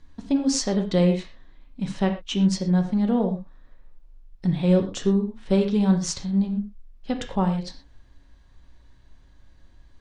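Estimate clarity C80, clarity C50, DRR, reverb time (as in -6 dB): 11.5 dB, 8.0 dB, 4.0 dB, no single decay rate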